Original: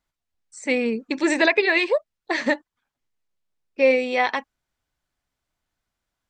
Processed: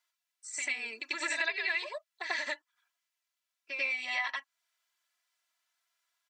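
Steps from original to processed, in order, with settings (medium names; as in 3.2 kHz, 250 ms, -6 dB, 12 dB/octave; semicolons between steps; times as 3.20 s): high-pass 1.3 kHz 12 dB/octave; comb 3 ms, depth 99%; compression 3:1, threshold -35 dBFS, peak gain reduction 17 dB; reverse echo 92 ms -5.5 dB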